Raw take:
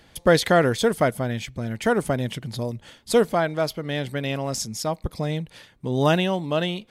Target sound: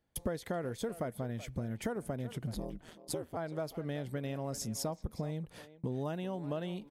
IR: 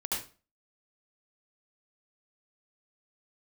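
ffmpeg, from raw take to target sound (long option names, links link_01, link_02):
-filter_complex "[0:a]agate=range=-24dB:threshold=-46dB:ratio=16:detection=peak,equalizer=frequency=3400:width_type=o:width=2.5:gain=-9.5,acompressor=threshold=-33dB:ratio=12,asettb=1/sr,asplit=3[link_01][link_02][link_03];[link_01]atrim=end=2.544[link_04];[link_02]atrim=start=2.54:end=3.37,asetpts=PTS-STARTPTS,afade=type=in:duration=0.004:curve=qsin,afade=type=out:start_time=0.826:duration=0.004:curve=qsin,aeval=exprs='val(0)*sin(2*PI*80*n/s)':channel_layout=same[link_05];[link_03]atrim=start=3.366[link_06];[link_04][link_05]acrossfade=duration=0.004:curve1=hsin:curve2=qsin[link_07];[link_07][link_06]acrossfade=duration=0.004:curve1=qsin:curve2=hsin,asplit=2[link_08][link_09];[link_09]adelay=380,highpass=300,lowpass=3400,asoftclip=type=hard:threshold=-32.5dB,volume=-13dB[link_10];[link_08][link_10]amix=inputs=2:normalize=0"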